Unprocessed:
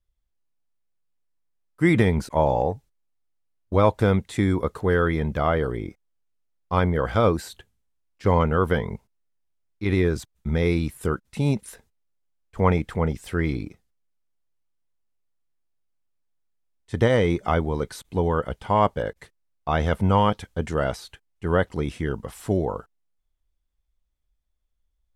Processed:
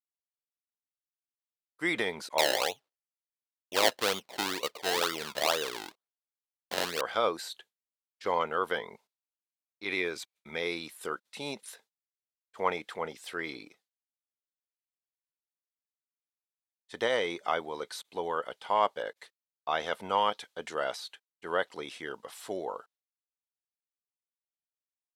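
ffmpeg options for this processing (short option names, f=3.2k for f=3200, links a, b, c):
-filter_complex "[0:a]asettb=1/sr,asplit=3[a][b][c];[a]atrim=end=2.384[d];[b]atrim=start=2.38:end=7.01,asetpts=PTS-STARTPTS,afade=t=in:d=0.004:c=qsin,afade=t=out:st=4.626:d=0.004:c=qsin,acrusher=samples=26:mix=1:aa=0.000001:lfo=1:lforange=26:lforate=2.1[e];[c]atrim=start=7.006[f];[d][e]acrossfade=d=0.004:c1=hsin:c2=qsin[g];[g][f]acrossfade=d=0.004:c1=qsin:c2=hsin,asettb=1/sr,asplit=3[h][i][j];[h]atrim=end=9.884[k];[i]atrim=start=9.88:end=10.6,asetpts=PTS-STARTPTS,afade=t=in:d=0.004:c=qsin,afade=t=out:st=0.716:d=0.004:c=qsin,equalizer=f=2.3k:w=6.5:g=11[l];[j]atrim=start=10.596[m];[k][l]acrossfade=d=0.004:c1=hsin:c2=qsin[n];[n][m]acrossfade=d=0.004:c1=qsin:c2=hsin,agate=range=-33dB:threshold=-49dB:ratio=3:detection=peak,highpass=540,equalizer=f=3.9k:t=o:w=0.88:g=7,volume=-5dB"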